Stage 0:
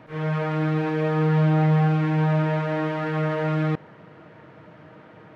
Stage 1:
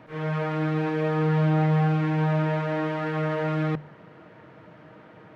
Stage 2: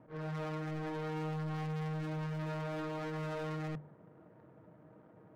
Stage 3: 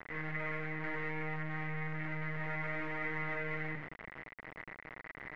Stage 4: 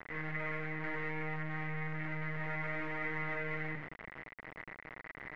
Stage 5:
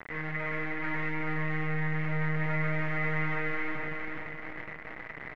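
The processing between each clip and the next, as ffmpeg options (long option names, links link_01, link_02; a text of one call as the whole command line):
ffmpeg -i in.wav -af "bandreject=frequency=50:width_type=h:width=6,bandreject=frequency=100:width_type=h:width=6,bandreject=frequency=150:width_type=h:width=6,volume=-1.5dB" out.wav
ffmpeg -i in.wav -af "adynamicsmooth=sensitivity=3.5:basefreq=820,asoftclip=type=hard:threshold=-28dB,volume=-8.5dB" out.wav
ffmpeg -i in.wav -af "acrusher=bits=6:dc=4:mix=0:aa=0.000001,aeval=exprs='0.0168*(cos(1*acos(clip(val(0)/0.0168,-1,1)))-cos(1*PI/2))+0.00422*(cos(5*acos(clip(val(0)/0.0168,-1,1)))-cos(5*PI/2))':channel_layout=same,lowpass=frequency=2000:width_type=q:width=10,volume=1.5dB" out.wav
ffmpeg -i in.wav -af anull out.wav
ffmpeg -i in.wav -af "aecho=1:1:424|848|1272|1696|2120|2544:0.631|0.29|0.134|0.0614|0.0283|0.013,volume=4.5dB" out.wav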